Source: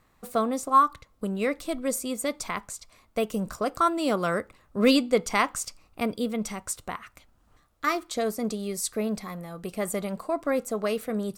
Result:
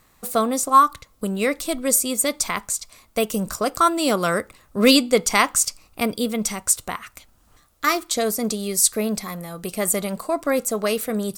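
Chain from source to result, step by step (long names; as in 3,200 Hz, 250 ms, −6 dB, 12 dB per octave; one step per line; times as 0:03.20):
high-shelf EQ 3,900 Hz +11 dB
level +4.5 dB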